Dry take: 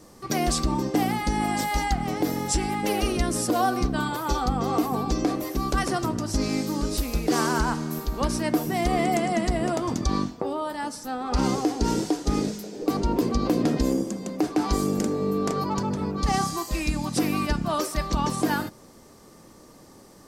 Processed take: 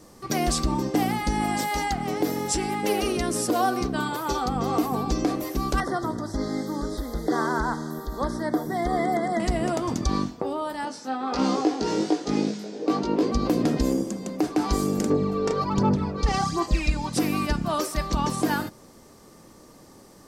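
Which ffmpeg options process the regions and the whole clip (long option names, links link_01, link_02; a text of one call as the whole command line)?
ffmpeg -i in.wav -filter_complex "[0:a]asettb=1/sr,asplit=3[link_01][link_02][link_03];[link_01]atrim=end=1.584[link_04];[link_02]atrim=start=1.58:end=4.56,asetpts=PTS-STARTPTS,afade=type=in:duration=0.004:curve=qsin,afade=type=out:start_time=2.976:duration=0.004:curve=qsin,highpass=frequency=130:poles=1,equalizer=frequency=410:width_type=o:width=0.23:gain=4.5[link_05];[link_03]atrim=start=4.556[link_06];[link_04][link_05]acrossfade=duration=0.004:curve1=hsin:curve2=qsin[link_07];[link_07][link_06]acrossfade=duration=0.004:curve1=qsin:curve2=hsin,asettb=1/sr,asplit=3[link_08][link_09][link_10];[link_08]atrim=end=5.804[link_11];[link_09]atrim=start=5.8:end=9.4,asetpts=PTS-STARTPTS,afade=type=in:duration=0.004:curve=qsin,afade=type=out:start_time=3.596:duration=0.004:curve=qsin,asuperstop=centerf=2600:order=20:qfactor=2.3,bass=frequency=250:gain=-5,treble=frequency=4000:gain=2,acrossover=split=3000[link_12][link_13];[link_13]acompressor=threshold=-47dB:ratio=4:attack=1:release=60[link_14];[link_12][link_14]amix=inputs=2:normalize=0[link_15];[link_10]atrim=start=9.396[link_16];[link_11][link_15]acrossfade=duration=0.004:curve1=hsin:curve2=qsin[link_17];[link_17][link_16]acrossfade=duration=0.004:curve1=qsin:curve2=hsin,asettb=1/sr,asplit=3[link_18][link_19][link_20];[link_18]atrim=end=10.854[link_21];[link_19]atrim=start=10.85:end=13.32,asetpts=PTS-STARTPTS,afade=type=in:duration=0.004:curve=qsin,afade=type=out:start_time=2.466:duration=0.004:curve=qsin,highpass=210,lowpass=5300,asplit=2[link_22][link_23];[link_23]adelay=19,volume=-2.5dB[link_24];[link_22][link_24]amix=inputs=2:normalize=0,atrim=end_sample=108927[link_25];[link_20]atrim=start=13.316[link_26];[link_21][link_25]acrossfade=duration=0.004:curve1=hsin:curve2=qsin[link_27];[link_27][link_26]acrossfade=duration=0.004:curve1=qsin:curve2=hsin,asettb=1/sr,asplit=3[link_28][link_29][link_30];[link_28]atrim=end=15.104[link_31];[link_29]atrim=start=15.1:end=17.13,asetpts=PTS-STARTPTS,afade=type=in:duration=0.004:curve=qsin,afade=type=out:start_time=2.026:duration=0.004:curve=qsin,lowpass=5900,aphaser=in_gain=1:out_gain=1:delay=2.2:decay=0.54:speed=1.3:type=sinusoidal[link_32];[link_30]atrim=start=17.126[link_33];[link_31][link_32]acrossfade=duration=0.004:curve1=hsin:curve2=qsin[link_34];[link_34][link_33]acrossfade=duration=0.004:curve1=qsin:curve2=hsin" out.wav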